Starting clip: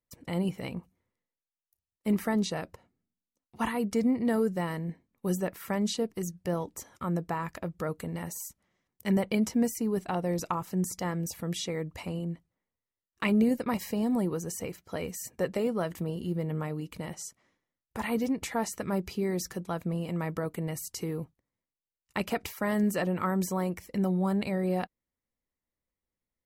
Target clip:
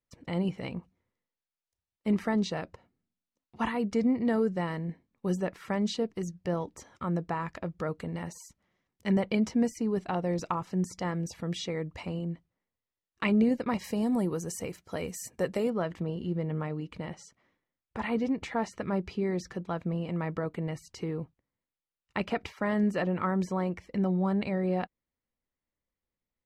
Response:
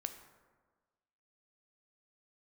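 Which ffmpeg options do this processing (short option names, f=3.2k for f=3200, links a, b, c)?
-af "asetnsamples=n=441:p=0,asendcmd='13.84 lowpass f 11000;15.7 lowpass f 3700',lowpass=5.1k"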